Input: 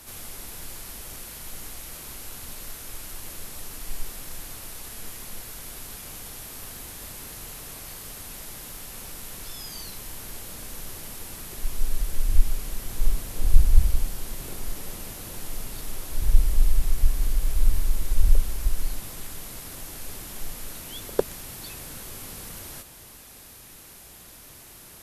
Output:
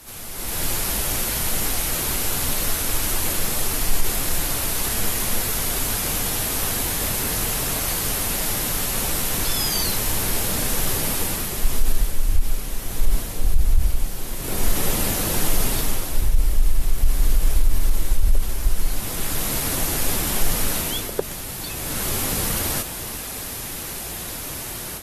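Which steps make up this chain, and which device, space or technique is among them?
low-bitrate web radio (level rider gain up to 13 dB; peak limiter -9 dBFS, peak gain reduction 8 dB; trim +1.5 dB; AAC 48 kbps 48 kHz)

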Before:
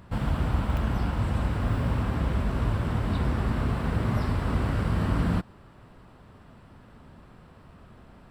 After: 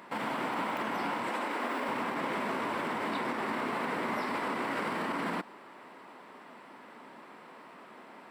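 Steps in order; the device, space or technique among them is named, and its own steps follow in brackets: laptop speaker (high-pass 260 Hz 24 dB/octave; peaking EQ 950 Hz +6 dB 0.45 oct; peaking EQ 2.1 kHz +8 dB 0.47 oct; peak limiter -27.5 dBFS, peak gain reduction 9.5 dB); 1.29–1.89 s: high-pass 230 Hz 24 dB/octave; trim +3 dB

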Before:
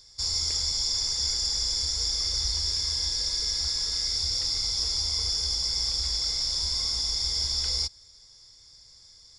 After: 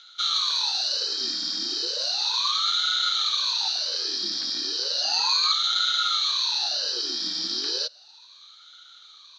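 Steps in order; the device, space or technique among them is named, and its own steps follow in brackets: 5.02–5.52 s: rippled EQ curve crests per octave 1.6, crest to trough 16 dB; voice changer toy (ring modulator with a swept carrier 810 Hz, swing 70%, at 0.34 Hz; cabinet simulation 430–4300 Hz, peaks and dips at 430 Hz -3 dB, 670 Hz -10 dB, 990 Hz -4 dB, 1.5 kHz +6 dB, 2.1 kHz -6 dB, 4 kHz +7 dB); trim +6.5 dB

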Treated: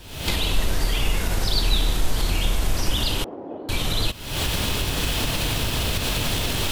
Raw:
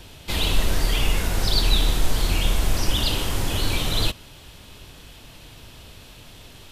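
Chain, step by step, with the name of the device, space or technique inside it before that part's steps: cheap recorder with automatic gain (white noise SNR 38 dB; recorder AGC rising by 72 dB/s); 3.24–3.69 s: Chebyshev band-pass 290–700 Hz, order 2; trim -1.5 dB

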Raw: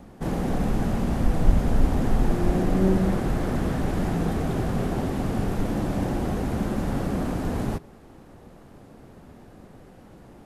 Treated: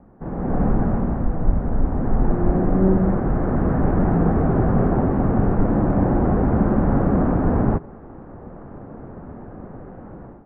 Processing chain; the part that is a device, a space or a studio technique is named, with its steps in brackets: action camera in a waterproof case (low-pass 1.5 kHz 24 dB/octave; level rider gain up to 14.5 dB; trim -4 dB; AAC 96 kbps 44.1 kHz)

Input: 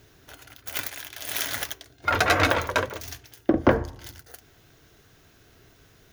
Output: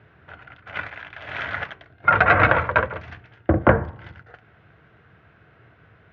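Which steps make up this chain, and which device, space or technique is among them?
sub-octave bass pedal (octave divider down 2 oct, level +3 dB; cabinet simulation 82–2400 Hz, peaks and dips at 260 Hz -9 dB, 380 Hz -6 dB, 1.4 kHz +4 dB); trim +4.5 dB

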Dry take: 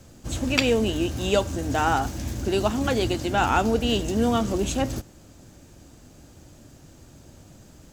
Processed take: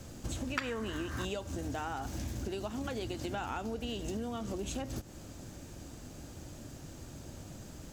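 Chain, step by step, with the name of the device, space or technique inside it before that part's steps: serial compression, peaks first (compression, threshold -31 dBFS, peak gain reduction 15 dB; compression 2.5:1, threshold -38 dBFS, peak gain reduction 7.5 dB); 0.57–1.25 s: high-order bell 1.4 kHz +14.5 dB 1.2 oct; trim +1.5 dB

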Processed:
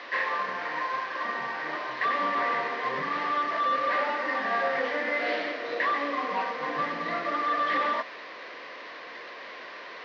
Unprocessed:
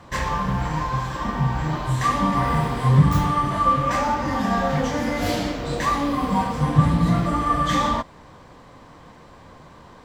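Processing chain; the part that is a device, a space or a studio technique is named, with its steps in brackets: digital answering machine (band-pass 370–3400 Hz; one-bit delta coder 32 kbps, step -34 dBFS; cabinet simulation 410–4300 Hz, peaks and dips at 850 Hz -10 dB, 1.3 kHz -3 dB, 1.9 kHz +7 dB, 3.3 kHz -4 dB)

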